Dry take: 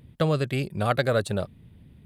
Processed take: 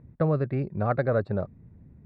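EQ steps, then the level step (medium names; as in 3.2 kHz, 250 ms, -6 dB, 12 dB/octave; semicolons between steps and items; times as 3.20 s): boxcar filter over 14 samples; distance through air 240 m; 0.0 dB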